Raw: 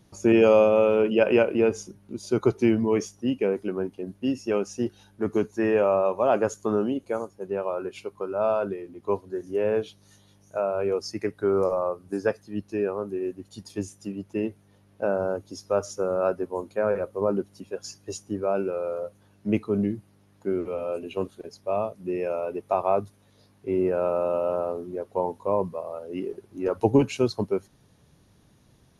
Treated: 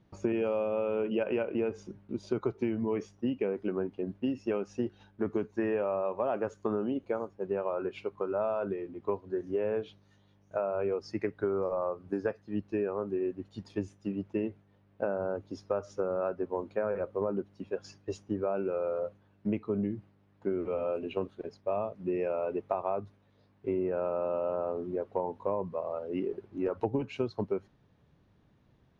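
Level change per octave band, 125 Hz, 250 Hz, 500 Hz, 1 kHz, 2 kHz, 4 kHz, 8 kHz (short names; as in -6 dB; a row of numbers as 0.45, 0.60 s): -7.0 dB, -6.5 dB, -7.0 dB, -7.5 dB, -9.0 dB, under -10 dB, under -15 dB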